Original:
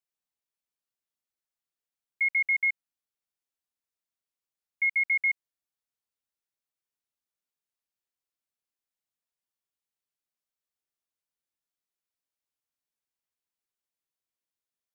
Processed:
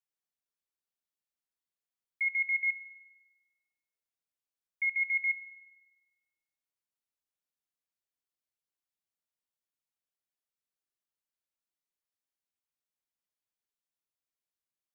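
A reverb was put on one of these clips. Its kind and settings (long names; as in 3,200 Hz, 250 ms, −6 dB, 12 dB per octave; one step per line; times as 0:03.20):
spring reverb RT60 1.2 s, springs 44 ms, chirp 60 ms, DRR 10.5 dB
level −5 dB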